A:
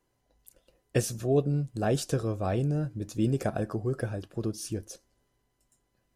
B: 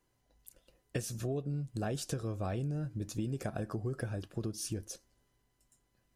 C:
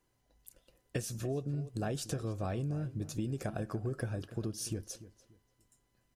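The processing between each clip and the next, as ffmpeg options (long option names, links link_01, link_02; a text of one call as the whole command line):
ffmpeg -i in.wav -af "equalizer=frequency=530:width_type=o:width=1.9:gain=-3.5,acompressor=threshold=-32dB:ratio=10" out.wav
ffmpeg -i in.wav -filter_complex "[0:a]asplit=2[link_01][link_02];[link_02]adelay=291,lowpass=frequency=3000:poles=1,volume=-15dB,asplit=2[link_03][link_04];[link_04]adelay=291,lowpass=frequency=3000:poles=1,volume=0.26,asplit=2[link_05][link_06];[link_06]adelay=291,lowpass=frequency=3000:poles=1,volume=0.26[link_07];[link_01][link_03][link_05][link_07]amix=inputs=4:normalize=0" out.wav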